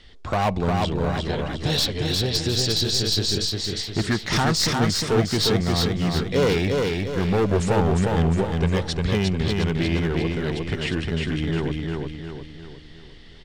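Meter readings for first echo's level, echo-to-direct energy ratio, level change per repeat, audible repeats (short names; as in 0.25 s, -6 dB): -3.0 dB, -2.0 dB, -6.5 dB, 5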